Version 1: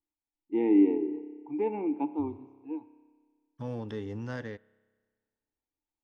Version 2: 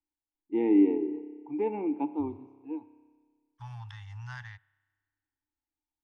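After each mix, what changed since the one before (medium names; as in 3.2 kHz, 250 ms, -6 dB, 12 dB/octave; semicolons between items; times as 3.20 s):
second voice: add Chebyshev band-stop 120–830 Hz, order 4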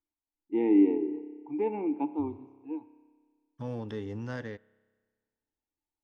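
second voice: remove Chebyshev band-stop 120–830 Hz, order 4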